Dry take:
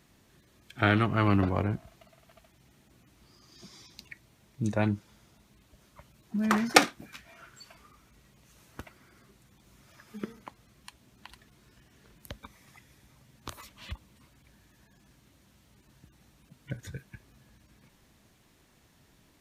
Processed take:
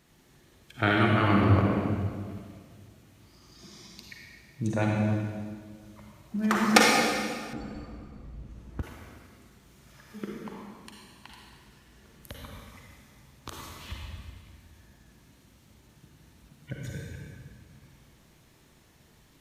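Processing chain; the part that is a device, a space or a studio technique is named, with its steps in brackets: stairwell (reverberation RT60 1.9 s, pre-delay 38 ms, DRR -2 dB); 7.53–8.83 s: tilt EQ -4 dB/octave; trim -1 dB

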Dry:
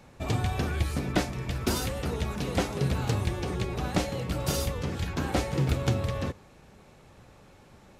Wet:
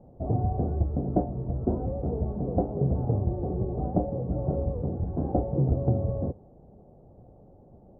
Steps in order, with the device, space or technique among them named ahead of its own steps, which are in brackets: under water (low-pass 620 Hz 24 dB/octave; peaking EQ 720 Hz +8 dB 0.35 oct); trim +2 dB

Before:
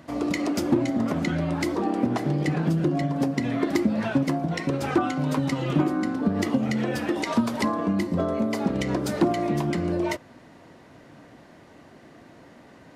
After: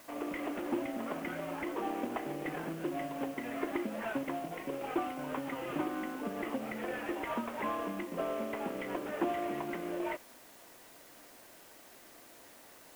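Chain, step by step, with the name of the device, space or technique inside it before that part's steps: 4.48–5.19 s: peaking EQ 1.6 kHz -9 dB 0.8 oct; army field radio (band-pass 390–3300 Hz; CVSD coder 16 kbps; white noise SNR 20 dB); trim -6.5 dB

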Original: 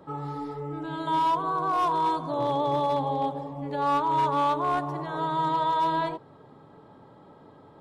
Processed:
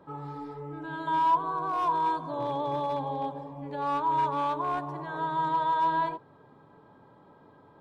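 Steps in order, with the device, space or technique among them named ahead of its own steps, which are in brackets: inside a helmet (treble shelf 5 kHz -5 dB; small resonant body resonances 1/1.6/2.4 kHz, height 10 dB, ringing for 65 ms); trim -5 dB

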